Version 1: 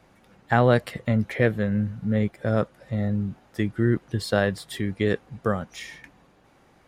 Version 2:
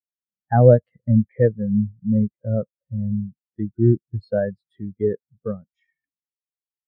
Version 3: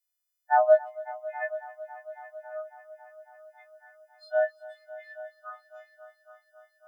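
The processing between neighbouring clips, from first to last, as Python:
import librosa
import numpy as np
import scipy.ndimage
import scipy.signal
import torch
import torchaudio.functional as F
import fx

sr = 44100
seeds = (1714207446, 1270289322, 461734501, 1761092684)

y1 = fx.spectral_expand(x, sr, expansion=2.5)
y1 = y1 * librosa.db_to_amplitude(5.0)
y2 = fx.freq_snap(y1, sr, grid_st=3)
y2 = fx.brickwall_highpass(y2, sr, low_hz=600.0)
y2 = fx.echo_heads(y2, sr, ms=275, heads='all three', feedback_pct=59, wet_db=-20.0)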